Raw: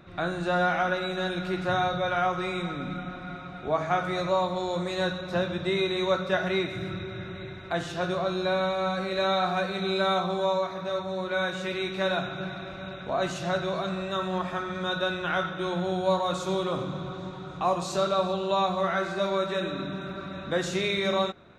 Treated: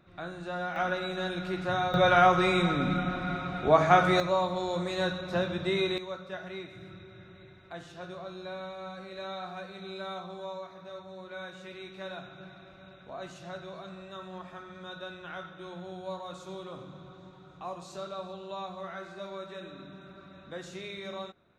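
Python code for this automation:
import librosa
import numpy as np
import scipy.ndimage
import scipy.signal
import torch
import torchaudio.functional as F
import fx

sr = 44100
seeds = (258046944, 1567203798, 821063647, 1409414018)

y = fx.gain(x, sr, db=fx.steps((0.0, -10.0), (0.76, -3.5), (1.94, 5.5), (4.2, -2.0), (5.98, -13.5)))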